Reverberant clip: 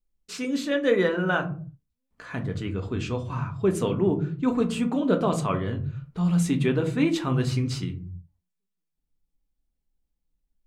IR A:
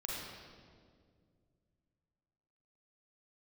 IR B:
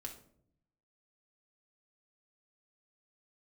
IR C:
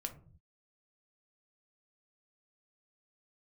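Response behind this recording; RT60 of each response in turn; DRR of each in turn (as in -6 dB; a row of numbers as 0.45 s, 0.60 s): C; 2.1 s, 0.65 s, 0.45 s; -4.5 dB, 1.0 dB, 5.0 dB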